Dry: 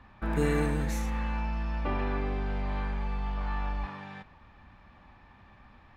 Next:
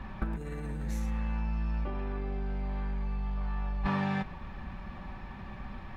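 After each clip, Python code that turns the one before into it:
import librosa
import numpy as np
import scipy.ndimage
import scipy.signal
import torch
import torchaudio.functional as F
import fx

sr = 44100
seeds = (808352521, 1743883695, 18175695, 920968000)

y = fx.low_shelf(x, sr, hz=340.0, db=7.0)
y = y + 0.41 * np.pad(y, (int(5.3 * sr / 1000.0), 0))[:len(y)]
y = fx.over_compress(y, sr, threshold_db=-29.0, ratio=-0.5)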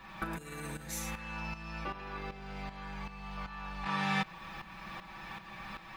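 y = fx.tilt_eq(x, sr, slope=3.5)
y = y + 0.6 * np.pad(y, (int(6.1 * sr / 1000.0), 0))[:len(y)]
y = fx.tremolo_shape(y, sr, shape='saw_up', hz=2.6, depth_pct=70)
y = y * librosa.db_to_amplitude(4.0)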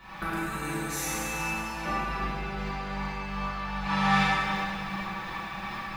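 y = fx.rev_plate(x, sr, seeds[0], rt60_s=3.0, hf_ratio=0.75, predelay_ms=0, drr_db=-9.0)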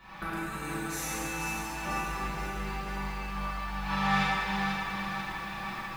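y = fx.echo_crushed(x, sr, ms=489, feedback_pct=55, bits=8, wet_db=-6)
y = y * librosa.db_to_amplitude(-3.5)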